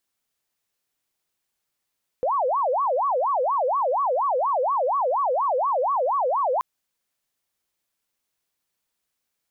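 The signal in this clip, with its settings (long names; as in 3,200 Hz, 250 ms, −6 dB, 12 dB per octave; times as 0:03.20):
siren wail 493–1,140 Hz 4.2 per second sine −19.5 dBFS 4.38 s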